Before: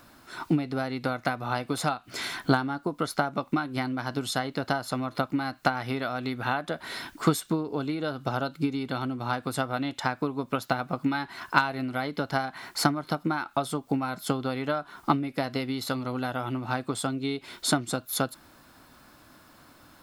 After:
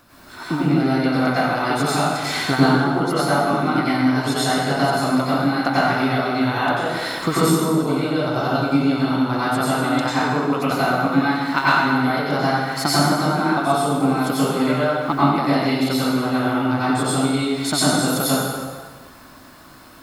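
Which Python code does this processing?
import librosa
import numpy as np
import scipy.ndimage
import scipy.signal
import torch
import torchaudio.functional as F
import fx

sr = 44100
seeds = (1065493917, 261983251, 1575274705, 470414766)

y = fx.rev_plate(x, sr, seeds[0], rt60_s=1.5, hf_ratio=0.8, predelay_ms=80, drr_db=-9.5)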